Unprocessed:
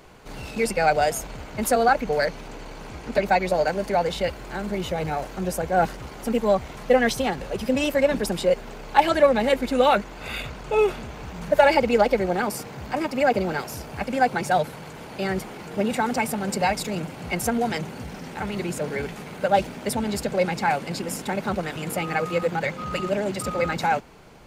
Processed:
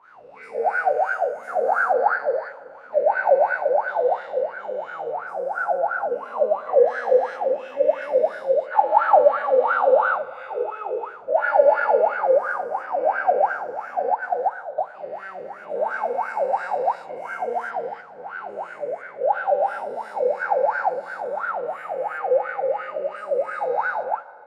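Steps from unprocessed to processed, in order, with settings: spectral dilation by 0.48 s; 14.14–14.78 gate -11 dBFS, range -12 dB; wah 2.9 Hz 490–1500 Hz, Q 19; Schroeder reverb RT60 2.4 s, combs from 32 ms, DRR 16.5 dB; gain +5 dB

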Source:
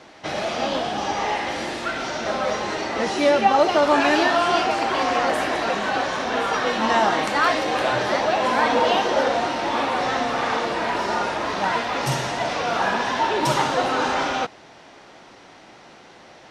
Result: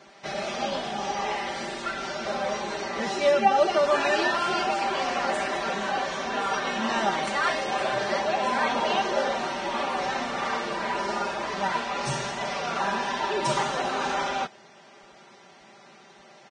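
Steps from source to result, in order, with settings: comb 5.1 ms, depth 77%; gain -7.5 dB; Vorbis 16 kbps 22050 Hz

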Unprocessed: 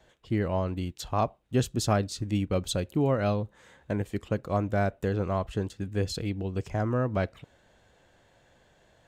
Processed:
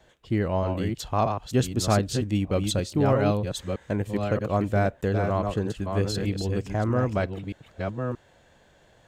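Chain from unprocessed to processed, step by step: reverse delay 0.627 s, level -5 dB; gain +2.5 dB

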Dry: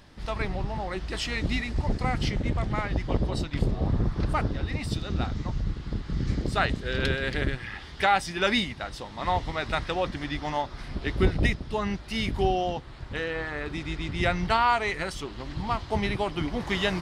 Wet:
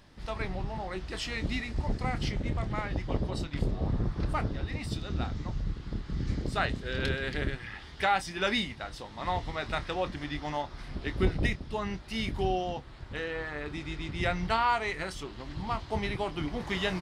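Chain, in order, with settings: doubler 27 ms -12.5 dB; gain -4.5 dB

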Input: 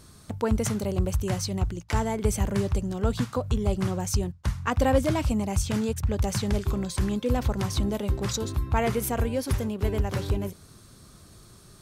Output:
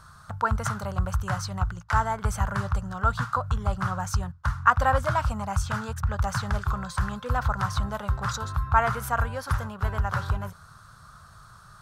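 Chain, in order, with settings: EQ curve 150 Hz 0 dB, 320 Hz -20 dB, 620 Hz -1 dB, 1400 Hz +15 dB, 2200 Hz -5 dB, 4200 Hz -3 dB, 11000 Hz -7 dB

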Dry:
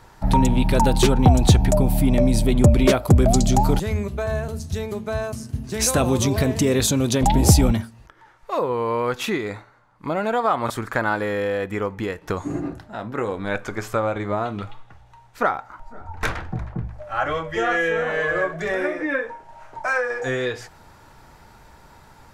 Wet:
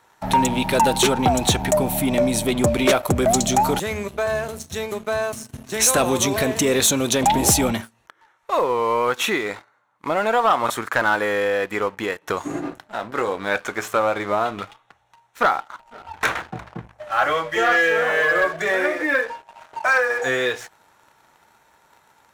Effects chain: HPF 620 Hz 6 dB/oct; notch 4800 Hz, Q 5.3; sample leveller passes 2; gain -1 dB

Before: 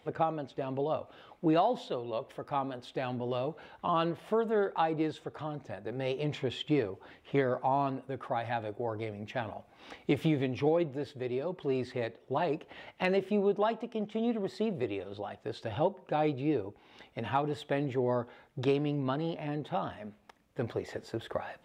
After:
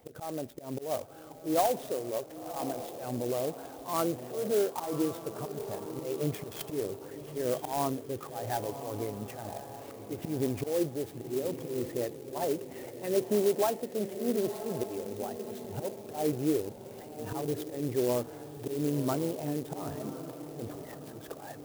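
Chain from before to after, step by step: formant sharpening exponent 1.5; auto swell 0.163 s; bell 2000 Hz -4 dB 2.6 oct; diffused feedback echo 1.058 s, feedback 45%, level -10 dB; clock jitter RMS 0.067 ms; gain +2.5 dB

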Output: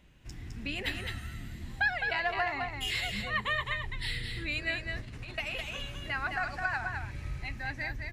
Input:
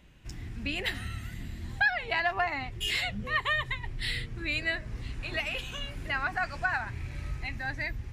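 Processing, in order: 4.96–5.38 negative-ratio compressor -39 dBFS, ratio -0.5; echo 0.21 s -5 dB; gain -3 dB

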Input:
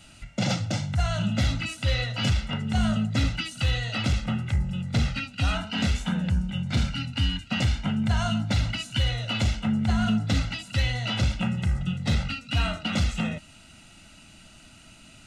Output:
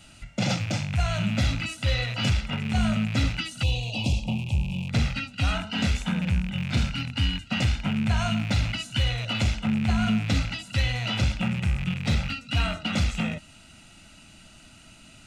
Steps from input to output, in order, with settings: rattling part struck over -30 dBFS, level -25 dBFS; 3.63–4.89 elliptic band-stop 970–2600 Hz, stop band 60 dB

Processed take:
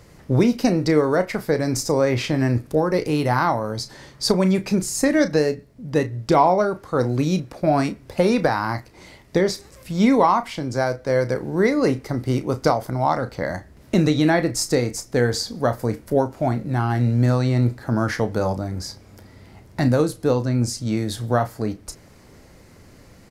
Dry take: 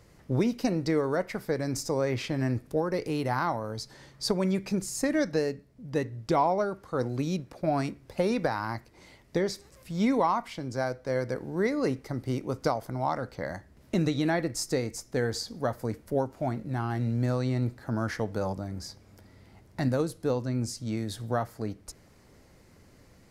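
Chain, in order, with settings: doubler 33 ms -11.5 dB; gain +8.5 dB

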